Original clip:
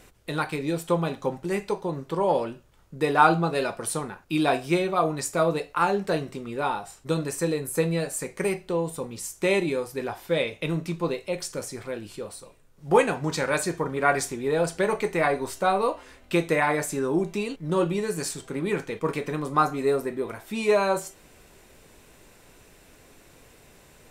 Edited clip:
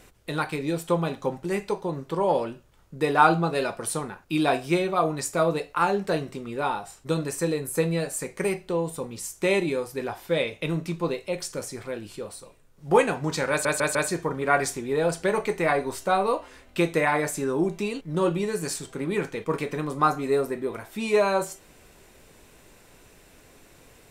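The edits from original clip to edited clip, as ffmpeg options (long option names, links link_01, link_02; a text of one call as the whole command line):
ffmpeg -i in.wav -filter_complex "[0:a]asplit=4[link_01][link_02][link_03][link_04];[link_01]atrim=end=13.652[link_05];[link_02]atrim=start=13.498:end=13.652[link_06];[link_03]atrim=start=13.498:end=13.652[link_07];[link_04]atrim=start=13.498[link_08];[link_05][link_06]acrossfade=duration=0.004:curve1=hsin:curve2=hsin[link_09];[link_09][link_07]acrossfade=duration=0.004:curve1=hsin:curve2=hsin[link_10];[link_10][link_08]acrossfade=duration=0.004:curve1=hsin:curve2=hsin" out.wav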